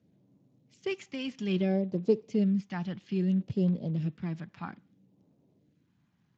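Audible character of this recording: phasing stages 2, 0.61 Hz, lowest notch 440–1900 Hz; Speex

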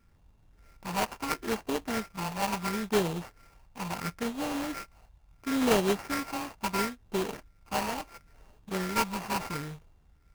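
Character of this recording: a buzz of ramps at a fixed pitch in blocks of 32 samples; phasing stages 6, 0.73 Hz, lowest notch 370–1400 Hz; aliases and images of a low sample rate 3.6 kHz, jitter 20%

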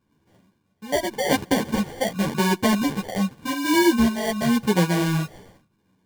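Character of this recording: phasing stages 4, 0.88 Hz, lowest notch 320–1500 Hz; aliases and images of a low sample rate 1.3 kHz, jitter 0%; a shimmering, thickened sound

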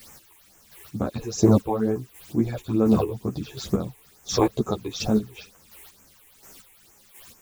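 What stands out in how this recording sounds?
a quantiser's noise floor 8-bit, dither triangular; phasing stages 8, 2.2 Hz, lowest notch 170–4200 Hz; chopped level 1.4 Hz, depth 60%, duty 25%; a shimmering, thickened sound

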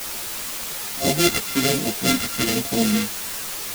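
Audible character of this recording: a buzz of ramps at a fixed pitch in blocks of 64 samples; phasing stages 2, 1.2 Hz, lowest notch 640–1300 Hz; a quantiser's noise floor 6-bit, dither triangular; a shimmering, thickened sound

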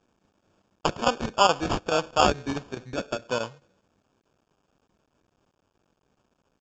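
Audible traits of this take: a quantiser's noise floor 12-bit, dither none; chopped level 4.7 Hz, depth 65%, duty 90%; aliases and images of a low sample rate 2 kHz, jitter 0%; µ-law

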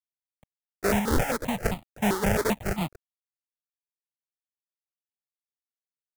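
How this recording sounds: aliases and images of a low sample rate 1.1 kHz, jitter 20%; random-step tremolo 3 Hz, depth 55%; a quantiser's noise floor 10-bit, dither none; notches that jump at a steady rate 7.6 Hz 670–1600 Hz

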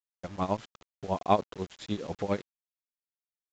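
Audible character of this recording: tremolo triangle 10 Hz, depth 95%; a quantiser's noise floor 8-bit, dither none; µ-law

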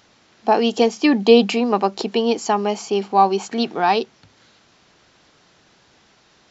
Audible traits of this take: noise floor -56 dBFS; spectral tilt -3.0 dB/octave

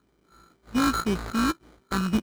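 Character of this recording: a buzz of ramps at a fixed pitch in blocks of 32 samples; phasing stages 8, 1.9 Hz, lowest notch 600–1500 Hz; aliases and images of a low sample rate 2.7 kHz, jitter 0%; IMA ADPCM

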